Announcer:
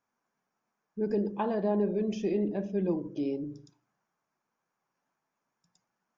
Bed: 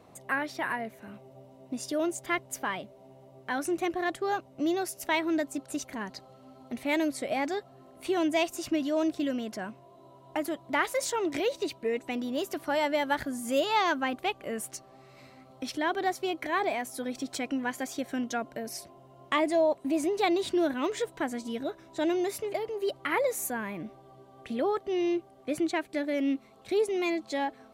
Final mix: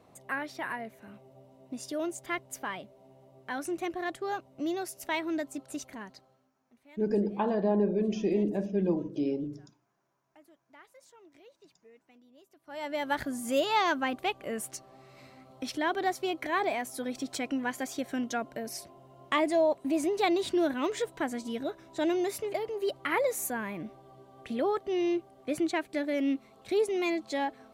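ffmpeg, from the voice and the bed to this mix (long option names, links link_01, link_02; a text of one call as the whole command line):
ffmpeg -i stem1.wav -i stem2.wav -filter_complex "[0:a]adelay=6000,volume=1.5dB[link_01];[1:a]volume=23dB,afade=type=out:start_time=5.81:duration=0.71:silence=0.0668344,afade=type=in:start_time=12.64:duration=0.57:silence=0.0446684[link_02];[link_01][link_02]amix=inputs=2:normalize=0" out.wav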